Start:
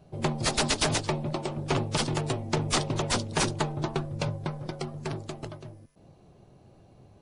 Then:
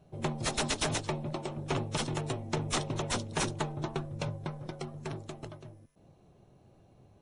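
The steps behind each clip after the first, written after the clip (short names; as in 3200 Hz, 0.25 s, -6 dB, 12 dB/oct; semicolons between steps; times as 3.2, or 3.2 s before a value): notch 4700 Hz, Q 8.2; gain -5 dB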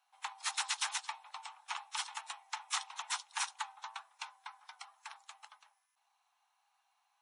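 steep high-pass 810 Hz 72 dB/oct; gain -2.5 dB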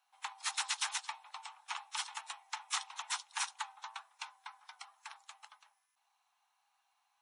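low shelf 500 Hz -4.5 dB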